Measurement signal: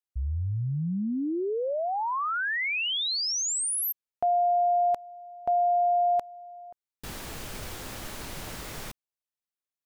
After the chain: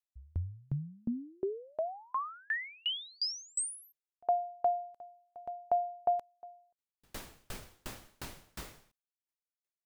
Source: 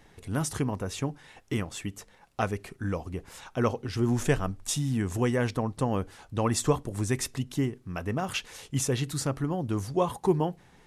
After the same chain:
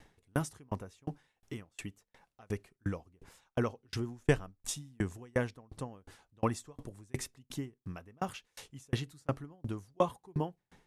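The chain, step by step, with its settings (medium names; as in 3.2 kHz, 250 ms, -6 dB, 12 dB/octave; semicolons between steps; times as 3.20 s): sawtooth tremolo in dB decaying 2.8 Hz, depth 38 dB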